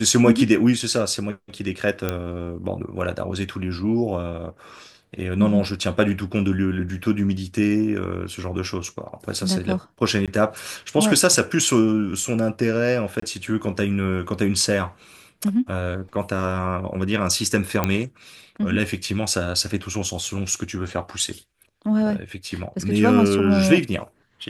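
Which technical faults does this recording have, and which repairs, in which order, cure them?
2.09 s: pop -9 dBFS
10.26–10.28 s: dropout 17 ms
13.20–13.22 s: dropout 24 ms
17.84 s: pop -6 dBFS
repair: de-click; interpolate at 10.26 s, 17 ms; interpolate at 13.20 s, 24 ms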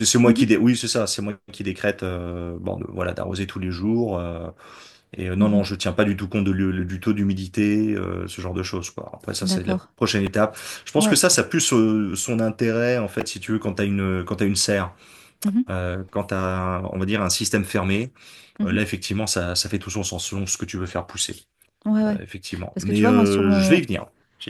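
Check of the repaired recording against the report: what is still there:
nothing left

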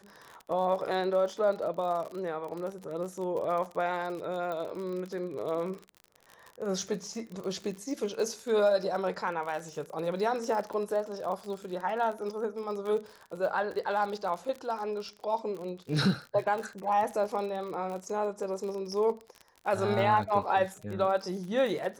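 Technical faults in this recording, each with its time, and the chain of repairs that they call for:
crackle 45 per s -36 dBFS
4.52 s: pop -25 dBFS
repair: de-click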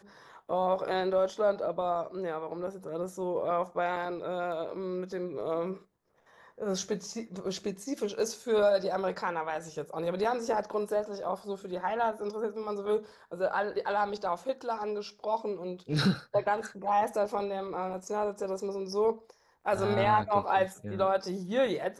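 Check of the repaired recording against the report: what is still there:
4.52 s: pop

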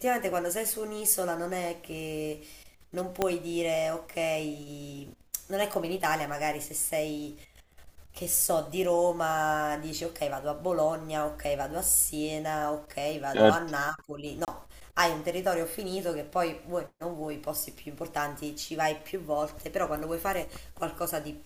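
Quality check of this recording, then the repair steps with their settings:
3.22 s: pop -11 dBFS
14.45–14.48 s: dropout 28 ms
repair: de-click; interpolate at 14.45 s, 28 ms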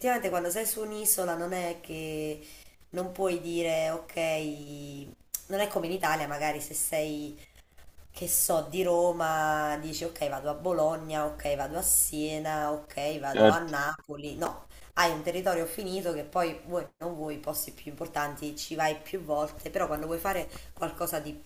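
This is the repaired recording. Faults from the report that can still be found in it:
3.22 s: pop

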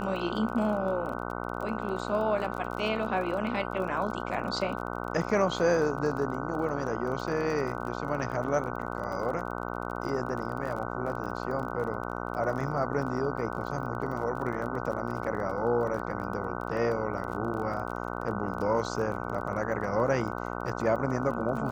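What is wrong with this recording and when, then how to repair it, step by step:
buzz 60 Hz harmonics 25 -35 dBFS
crackle 28 per s -36 dBFS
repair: de-click; de-hum 60 Hz, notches 25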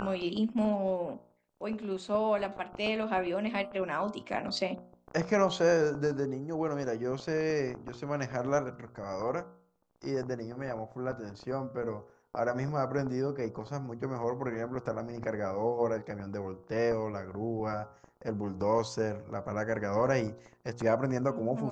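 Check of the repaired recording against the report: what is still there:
nothing left

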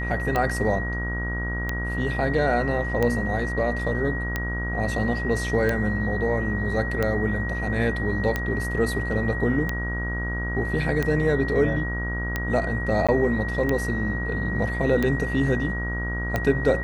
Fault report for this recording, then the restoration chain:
buzz 60 Hz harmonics 27 -29 dBFS
tick 45 rpm -11 dBFS
whine 1.9 kHz -30 dBFS
13.07–13.09 s: dropout 16 ms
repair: de-click; band-stop 1.9 kHz, Q 30; de-hum 60 Hz, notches 27; interpolate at 13.07 s, 16 ms

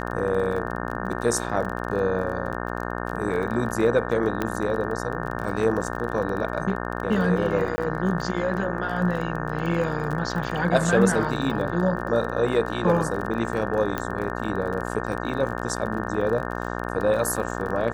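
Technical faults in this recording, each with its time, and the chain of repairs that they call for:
buzz 60 Hz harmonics 30 -30 dBFS
crackle 30 per s -30 dBFS
4.42 s: pop -12 dBFS
7.76–7.78 s: dropout 20 ms
13.98 s: pop -12 dBFS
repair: de-click; de-hum 60 Hz, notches 30; interpolate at 7.76 s, 20 ms

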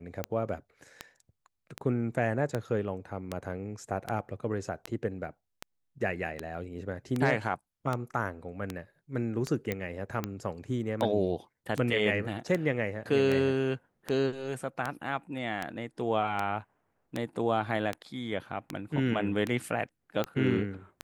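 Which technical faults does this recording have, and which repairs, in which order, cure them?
tick 78 rpm -17 dBFS
9.72 s: pop -17 dBFS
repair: de-click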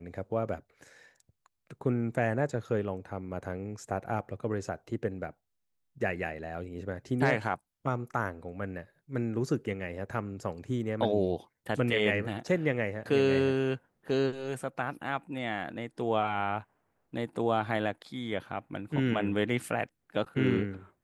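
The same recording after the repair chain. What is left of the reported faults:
9.72 s: pop

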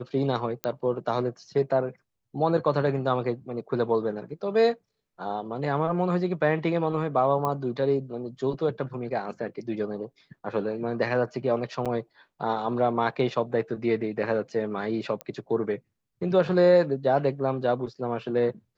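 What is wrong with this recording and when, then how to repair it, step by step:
0.64 s: pop -13 dBFS
7.45 s: pop -16 dBFS
11.85–11.86 s: dropout 6.7 ms
15.21 s: pop -18 dBFS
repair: de-click; interpolate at 11.85 s, 6.7 ms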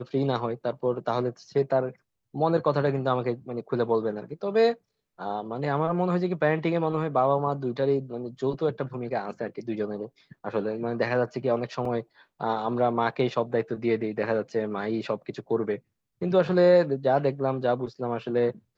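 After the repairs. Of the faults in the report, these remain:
nothing left

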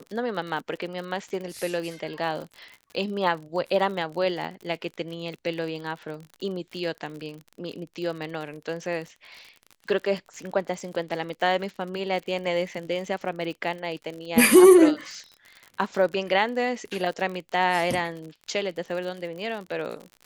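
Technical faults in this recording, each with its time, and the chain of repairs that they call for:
crackle 53 per s -34 dBFS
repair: de-click

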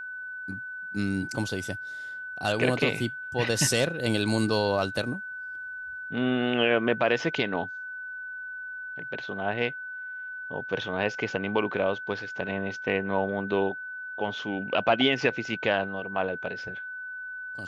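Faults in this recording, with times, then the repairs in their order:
whine 1.5 kHz -35 dBFS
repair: band-stop 1.5 kHz, Q 30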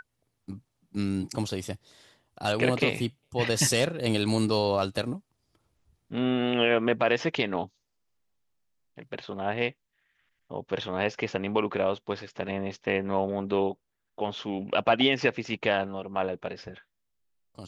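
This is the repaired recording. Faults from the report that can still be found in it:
nothing left

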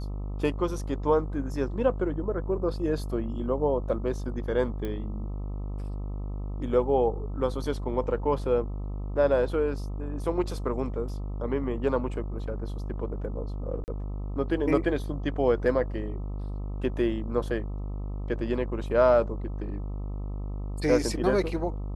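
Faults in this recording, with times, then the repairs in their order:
buzz 50 Hz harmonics 26 -33 dBFS
4.85 s: pop -22 dBFS
13.84–13.88 s: dropout 39 ms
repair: de-click; de-hum 50 Hz, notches 26; interpolate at 13.84 s, 39 ms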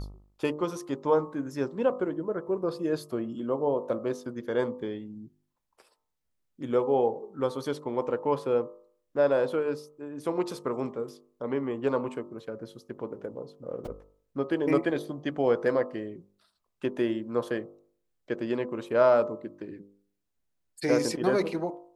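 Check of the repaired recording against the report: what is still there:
nothing left

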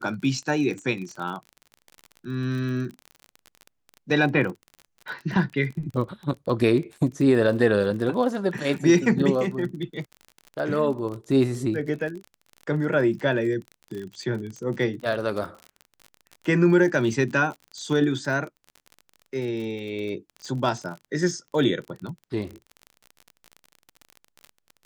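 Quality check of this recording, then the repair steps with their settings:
crackle 34 per s -32 dBFS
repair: de-click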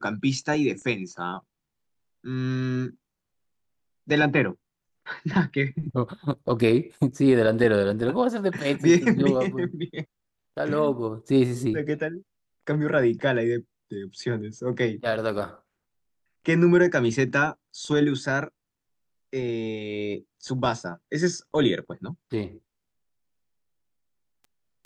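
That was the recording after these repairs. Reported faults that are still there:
nothing left

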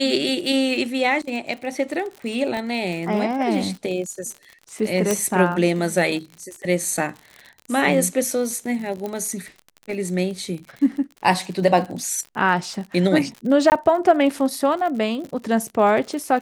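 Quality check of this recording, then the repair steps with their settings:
crackle 58 per s -30 dBFS
2.57 s: pop -16 dBFS
5.11 s: pop -6 dBFS
9.06 s: pop -16 dBFS
13.70–13.72 s: dropout 19 ms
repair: de-click; interpolate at 13.70 s, 19 ms

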